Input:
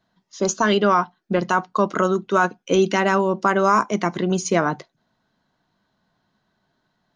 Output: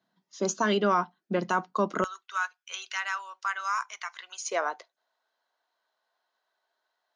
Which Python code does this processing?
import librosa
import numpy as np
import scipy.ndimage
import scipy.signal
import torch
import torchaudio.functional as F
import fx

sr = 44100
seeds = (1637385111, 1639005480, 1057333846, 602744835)

y = fx.highpass(x, sr, hz=fx.steps((0.0, 150.0), (2.04, 1200.0), (4.47, 500.0)), slope=24)
y = F.gain(torch.from_numpy(y), -7.0).numpy()